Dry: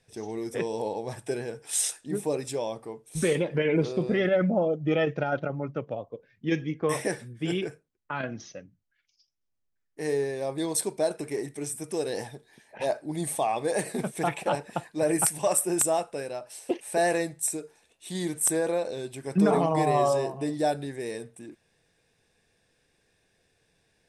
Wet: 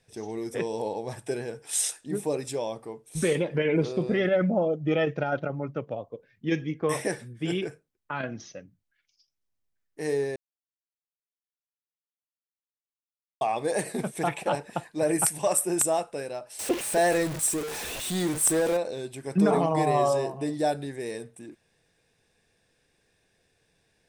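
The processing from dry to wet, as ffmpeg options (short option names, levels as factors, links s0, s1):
-filter_complex "[0:a]asettb=1/sr,asplit=3[s0][s1][s2];[s0]atrim=end=16.594[s3];[s1]atrim=start=16.59:end=18.77,asetpts=PTS-STARTPTS,afade=t=in:d=0.004:c=qsin,afade=t=out:st=2.176:d=0.004:c=qsin,aeval=exprs='val(0)+0.5*0.0355*sgn(val(0))':c=same[s4];[s2]atrim=start=18.766[s5];[s3][s4]acrossfade=d=0.004:c1=hsin:c2=qsin[s6];[s6][s5]acrossfade=d=0.004:c1=qsin:c2=hsin,asplit=3[s7][s8][s9];[s7]atrim=end=10.36,asetpts=PTS-STARTPTS,afade=t=out:st=10.356:d=0.004:c=hsin[s10];[s8]atrim=start=10.36:end=13.41,asetpts=PTS-STARTPTS,volume=0[s11];[s9]atrim=start=13.41,asetpts=PTS-STARTPTS,afade=t=in:d=0.004:c=hsin[s12];[s10][s11][s12]concat=n=3:v=0:a=1"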